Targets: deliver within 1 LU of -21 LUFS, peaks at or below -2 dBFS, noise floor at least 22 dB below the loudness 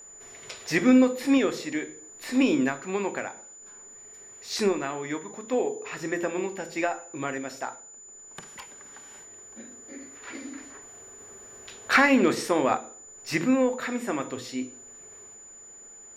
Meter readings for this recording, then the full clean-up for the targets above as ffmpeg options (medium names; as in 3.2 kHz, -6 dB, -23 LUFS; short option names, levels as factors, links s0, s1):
steady tone 7 kHz; tone level -45 dBFS; loudness -26.0 LUFS; peak level -9.5 dBFS; loudness target -21.0 LUFS
-> -af "bandreject=f=7000:w=30"
-af "volume=1.78"